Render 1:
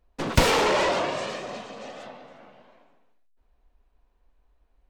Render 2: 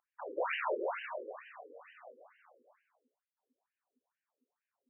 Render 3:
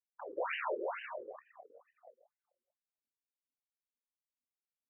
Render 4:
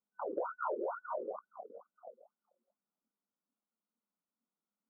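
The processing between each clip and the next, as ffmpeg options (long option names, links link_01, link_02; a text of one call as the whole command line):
ffmpeg -i in.wav -af "aeval=exprs='val(0)+0.00631*(sin(2*PI*50*n/s)+sin(2*PI*2*50*n/s)/2+sin(2*PI*3*50*n/s)/3+sin(2*PI*4*50*n/s)/4+sin(2*PI*5*50*n/s)/5)':channel_layout=same,equalizer=frequency=270:width_type=o:width=0.39:gain=-6.5,afftfilt=real='re*between(b*sr/1024,360*pow(2200/360,0.5+0.5*sin(2*PI*2.2*pts/sr))/1.41,360*pow(2200/360,0.5+0.5*sin(2*PI*2.2*pts/sr))*1.41)':imag='im*between(b*sr/1024,360*pow(2200/360,0.5+0.5*sin(2*PI*2.2*pts/sr))/1.41,360*pow(2200/360,0.5+0.5*sin(2*PI*2.2*pts/sr))*1.41)':win_size=1024:overlap=0.75,volume=-7dB" out.wav
ffmpeg -i in.wav -af "anlmdn=0.0158,volume=-2dB" out.wav
ffmpeg -i in.wav -af "afftfilt=real='re*between(b*sr/4096,160,1500)':imag='im*between(b*sr/4096,160,1500)':win_size=4096:overlap=0.75,equalizer=frequency=210:width_type=o:width=0.66:gain=13.5,acompressor=threshold=-40dB:ratio=6,volume=6.5dB" out.wav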